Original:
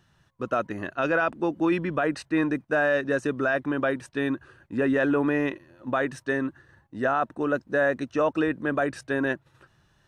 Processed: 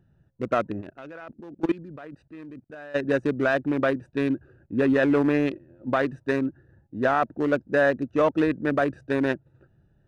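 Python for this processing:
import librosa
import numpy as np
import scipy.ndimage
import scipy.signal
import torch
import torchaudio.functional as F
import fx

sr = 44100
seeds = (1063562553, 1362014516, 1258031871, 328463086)

y = fx.wiener(x, sr, points=41)
y = fx.level_steps(y, sr, step_db=22, at=(0.8, 2.94), fade=0.02)
y = y * librosa.db_to_amplitude(3.5)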